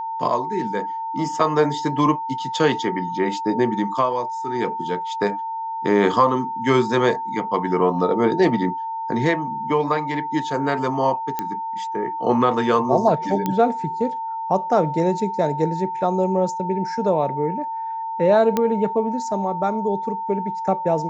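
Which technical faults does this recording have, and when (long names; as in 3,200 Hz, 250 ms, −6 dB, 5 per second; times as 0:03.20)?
whistle 900 Hz −25 dBFS
0:11.39: click −10 dBFS
0:13.46: click −9 dBFS
0:18.57: click −7 dBFS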